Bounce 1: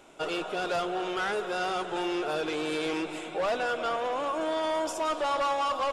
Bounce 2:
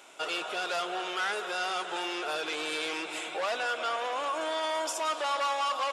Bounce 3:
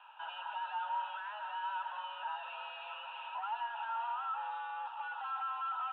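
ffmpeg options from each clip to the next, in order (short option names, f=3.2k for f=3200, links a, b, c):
-filter_complex "[0:a]highpass=f=1.4k:p=1,asplit=2[a][b];[b]alimiter=level_in=8dB:limit=-24dB:level=0:latency=1:release=170,volume=-8dB,volume=1dB[c];[a][c]amix=inputs=2:normalize=0"
-filter_complex "[0:a]asplit=2[a][b];[b]highpass=f=720:p=1,volume=21dB,asoftclip=type=tanh:threshold=-19dB[c];[a][c]amix=inputs=2:normalize=0,lowpass=f=2.6k:p=1,volume=-6dB,asplit=3[d][e][f];[d]bandpass=f=730:t=q:w=8,volume=0dB[g];[e]bandpass=f=1.09k:t=q:w=8,volume=-6dB[h];[f]bandpass=f=2.44k:t=q:w=8,volume=-9dB[i];[g][h][i]amix=inputs=3:normalize=0,highpass=f=240:t=q:w=0.5412,highpass=f=240:t=q:w=1.307,lowpass=f=3.2k:t=q:w=0.5176,lowpass=f=3.2k:t=q:w=0.7071,lowpass=f=3.2k:t=q:w=1.932,afreqshift=210,volume=-5dB"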